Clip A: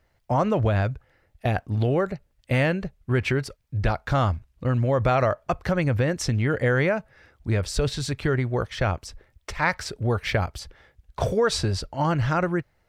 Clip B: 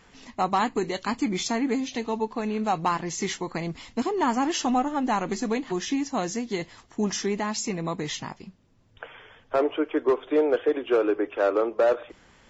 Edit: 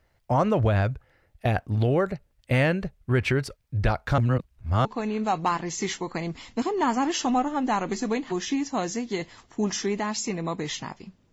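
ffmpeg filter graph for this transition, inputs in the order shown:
ffmpeg -i cue0.wav -i cue1.wav -filter_complex "[0:a]apad=whole_dur=11.32,atrim=end=11.32,asplit=2[link_01][link_02];[link_01]atrim=end=4.182[link_03];[link_02]atrim=start=4.178:end=4.852,asetpts=PTS-STARTPTS,areverse[link_04];[1:a]atrim=start=2.248:end=8.72[link_05];[link_03][link_04]acrossfade=duration=0.004:curve1=hsin:curve2=hsin[link_06];[link_06][link_05]acrossfade=duration=0.004:curve1=hsin:curve2=hsin" out.wav

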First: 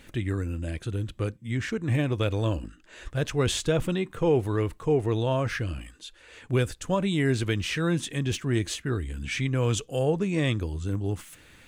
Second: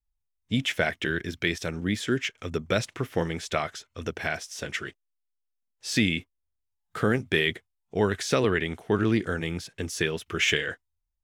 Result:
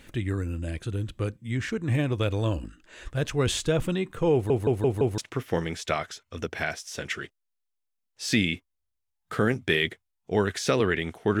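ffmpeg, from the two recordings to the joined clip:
ffmpeg -i cue0.wav -i cue1.wav -filter_complex "[0:a]apad=whole_dur=11.4,atrim=end=11.4,asplit=5[link_01][link_02][link_03][link_04][link_05];[link_01]atrim=end=4.502[link_06];[link_02]atrim=start=4.328:end=4.502[link_07];[link_03]atrim=start=4.328:end=4.502[link_08];[link_04]atrim=start=4.328:end=4.502[link_09];[link_05]atrim=start=4.328:end=4.502[link_10];[1:a]atrim=start=2.818:end=9.04[link_11];[link_06][link_07]acrossfade=duration=0.004:curve1=hsin:curve2=hsin[link_12];[link_12][link_08]acrossfade=duration=0.004:curve1=hsin:curve2=hsin[link_13];[link_13][link_09]acrossfade=duration=0.004:curve1=hsin:curve2=hsin[link_14];[link_14][link_10]acrossfade=duration=0.004:curve1=hsin:curve2=hsin[link_15];[link_15][link_11]acrossfade=duration=0.004:curve1=hsin:curve2=hsin" out.wav

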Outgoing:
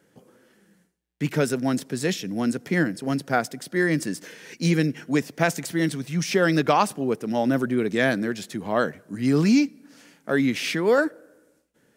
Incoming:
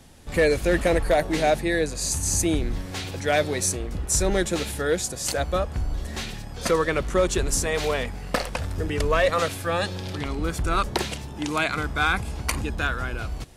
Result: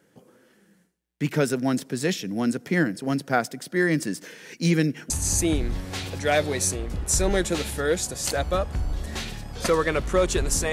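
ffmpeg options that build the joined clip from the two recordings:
ffmpeg -i cue0.wav -i cue1.wav -filter_complex "[0:a]apad=whole_dur=10.72,atrim=end=10.72,atrim=end=5.102[link_01];[1:a]atrim=start=2.108:end=7.73[link_02];[link_01][link_02]acrossfade=duration=0.004:curve1=hsin:curve2=hsin" out.wav

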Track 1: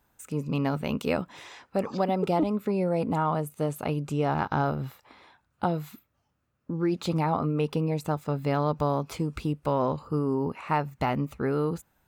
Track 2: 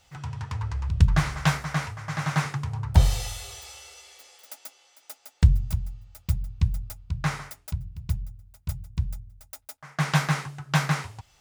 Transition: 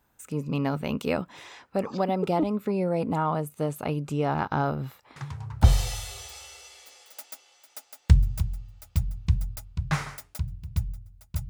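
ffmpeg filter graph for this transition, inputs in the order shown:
ffmpeg -i cue0.wav -i cue1.wav -filter_complex "[1:a]asplit=2[link_01][link_02];[0:a]apad=whole_dur=11.49,atrim=end=11.49,atrim=end=5.642[link_03];[link_02]atrim=start=2.968:end=8.82[link_04];[link_01]atrim=start=2.49:end=2.97,asetpts=PTS-STARTPTS,volume=-6dB,afade=type=in:duration=0.004:curve=hsin,afade=type=out:start_time=0.476:duration=0.004:curve=hsin,adelay=5160[link_05];[link_03][link_04]acrossfade=duration=0.004:curve1=hsin:curve2=hsin[link_06];[link_06][link_05]amix=inputs=2:normalize=0" out.wav

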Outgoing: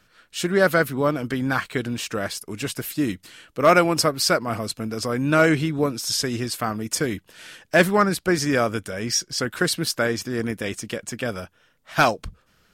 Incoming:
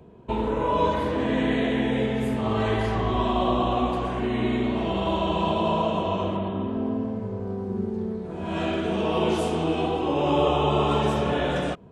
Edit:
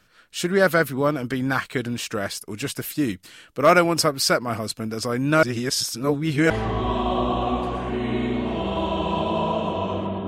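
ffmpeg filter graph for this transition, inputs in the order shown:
ffmpeg -i cue0.wav -i cue1.wav -filter_complex "[0:a]apad=whole_dur=10.27,atrim=end=10.27,asplit=2[link_01][link_02];[link_01]atrim=end=5.432[link_03];[link_02]atrim=start=5.428:end=6.502,asetpts=PTS-STARTPTS,areverse[link_04];[1:a]atrim=start=2.798:end=6.57[link_05];[link_03][link_04]acrossfade=duration=0.004:curve1=hsin:curve2=hsin[link_06];[link_06][link_05]acrossfade=duration=0.004:curve1=hsin:curve2=hsin" out.wav

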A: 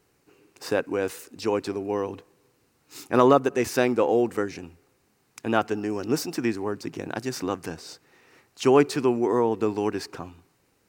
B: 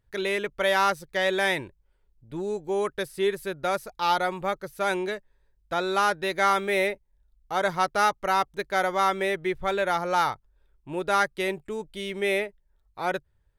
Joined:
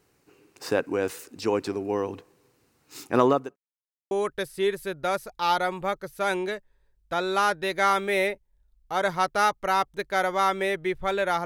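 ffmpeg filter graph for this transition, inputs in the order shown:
ffmpeg -i cue0.wav -i cue1.wav -filter_complex "[0:a]apad=whole_dur=11.45,atrim=end=11.45,asplit=2[link_01][link_02];[link_01]atrim=end=3.56,asetpts=PTS-STARTPTS,afade=type=out:start_time=2.97:duration=0.59:curve=qsin[link_03];[link_02]atrim=start=3.56:end=4.11,asetpts=PTS-STARTPTS,volume=0[link_04];[1:a]atrim=start=2.71:end=10.05,asetpts=PTS-STARTPTS,afade=type=in:duration=0.004:curve=hsin[link_05];[link_03][link_04][link_05]concat=n=3:v=0:a=1" out.wav

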